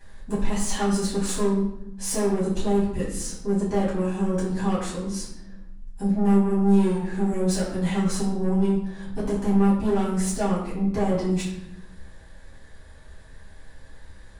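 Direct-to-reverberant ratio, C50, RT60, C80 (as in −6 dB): −8.5 dB, 4.0 dB, 0.80 s, 6.5 dB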